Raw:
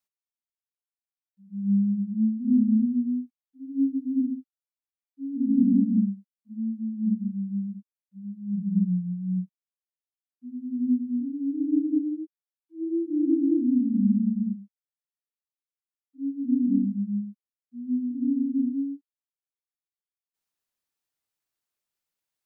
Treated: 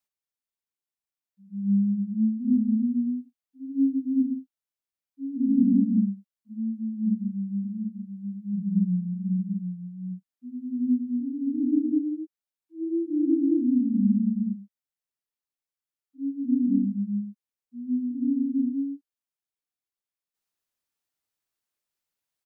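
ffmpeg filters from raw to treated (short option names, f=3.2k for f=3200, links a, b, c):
-filter_complex "[0:a]asplit=3[a][b][c];[a]afade=t=out:st=2.54:d=0.02[d];[b]asplit=2[e][f];[f]adelay=30,volume=-9dB[g];[e][g]amix=inputs=2:normalize=0,afade=t=in:st=2.54:d=0.02,afade=t=out:st=5.51:d=0.02[h];[c]afade=t=in:st=5.51:d=0.02[i];[d][h][i]amix=inputs=3:normalize=0,asplit=3[j][k][l];[j]afade=t=out:st=7.63:d=0.02[m];[k]aecho=1:1:740:0.447,afade=t=in:st=7.63:d=0.02,afade=t=out:st=11.91:d=0.02[n];[l]afade=t=in:st=11.91:d=0.02[o];[m][n][o]amix=inputs=3:normalize=0"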